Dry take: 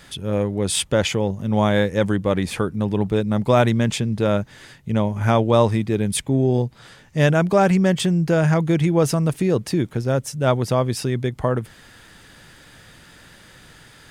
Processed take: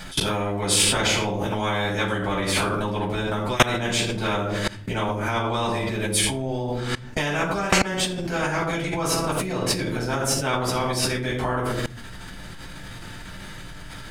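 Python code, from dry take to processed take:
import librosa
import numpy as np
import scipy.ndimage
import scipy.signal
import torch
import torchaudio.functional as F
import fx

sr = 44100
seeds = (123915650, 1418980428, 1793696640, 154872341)

y = fx.room_shoebox(x, sr, seeds[0], volume_m3=590.0, walls='furnished', distance_m=7.9)
y = fx.level_steps(y, sr, step_db=24)
y = fx.spectral_comp(y, sr, ratio=4.0)
y = y * 10.0 ** (-8.5 / 20.0)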